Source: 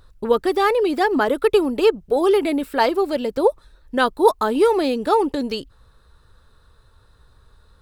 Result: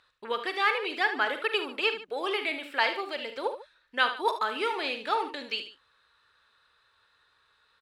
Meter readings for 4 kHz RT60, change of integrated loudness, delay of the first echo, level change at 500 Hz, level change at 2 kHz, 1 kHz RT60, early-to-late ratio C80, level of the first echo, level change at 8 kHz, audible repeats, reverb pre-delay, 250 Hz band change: no reverb, -9.5 dB, 44 ms, -16.0 dB, -0.5 dB, no reverb, no reverb, -12.0 dB, -13.5 dB, 3, no reverb, -19.5 dB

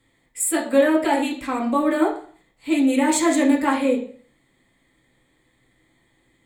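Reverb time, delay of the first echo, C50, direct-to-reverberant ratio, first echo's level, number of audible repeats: 0.50 s, no echo, 8.5 dB, -2.0 dB, no echo, no echo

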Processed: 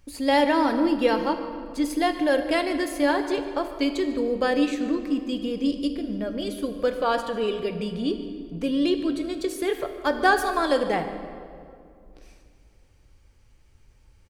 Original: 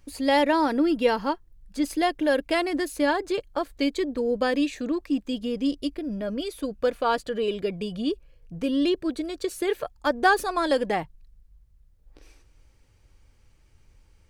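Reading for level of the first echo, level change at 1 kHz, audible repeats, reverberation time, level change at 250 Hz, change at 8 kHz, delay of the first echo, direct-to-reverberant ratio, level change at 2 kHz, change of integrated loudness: -19.0 dB, +1.0 dB, 1, 2.4 s, +1.5 dB, +0.5 dB, 147 ms, 6.5 dB, +1.0 dB, +1.0 dB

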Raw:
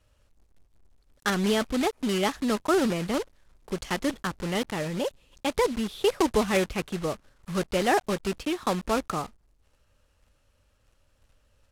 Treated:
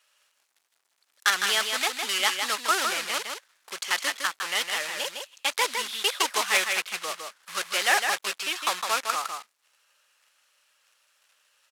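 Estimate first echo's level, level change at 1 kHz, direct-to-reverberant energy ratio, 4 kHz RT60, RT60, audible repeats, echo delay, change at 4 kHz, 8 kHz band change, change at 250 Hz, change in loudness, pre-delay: -5.5 dB, +2.0 dB, no reverb, no reverb, no reverb, 1, 158 ms, +9.0 dB, +9.0 dB, -19.5 dB, +2.0 dB, no reverb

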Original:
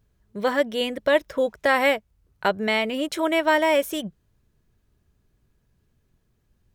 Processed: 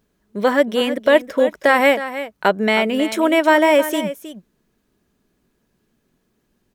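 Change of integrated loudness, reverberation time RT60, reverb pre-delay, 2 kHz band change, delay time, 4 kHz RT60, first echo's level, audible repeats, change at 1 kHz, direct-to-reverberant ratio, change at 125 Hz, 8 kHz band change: +6.0 dB, no reverb, no reverb, +5.5 dB, 317 ms, no reverb, -12.5 dB, 1, +6.0 dB, no reverb, no reading, +5.0 dB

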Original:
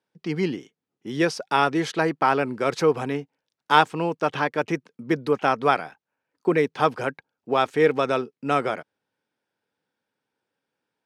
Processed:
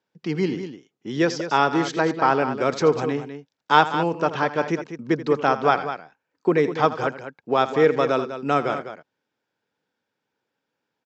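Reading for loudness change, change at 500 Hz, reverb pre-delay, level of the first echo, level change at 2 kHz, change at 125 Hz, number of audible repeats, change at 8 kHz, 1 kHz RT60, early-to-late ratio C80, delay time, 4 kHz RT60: +1.5 dB, +2.0 dB, no reverb, -15.0 dB, +0.5 dB, +2.0 dB, 2, no reading, no reverb, no reverb, 83 ms, no reverb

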